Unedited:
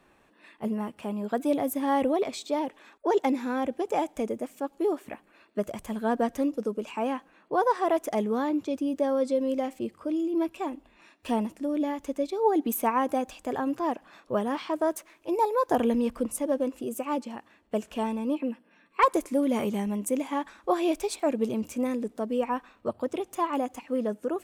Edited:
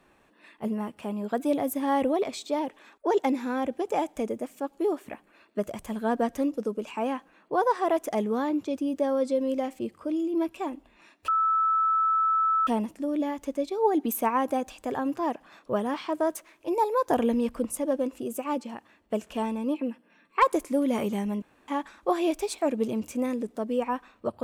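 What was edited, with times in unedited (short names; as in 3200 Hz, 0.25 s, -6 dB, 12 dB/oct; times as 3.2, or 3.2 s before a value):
11.28 add tone 1310 Hz -20.5 dBFS 1.39 s
20.03–20.29 room tone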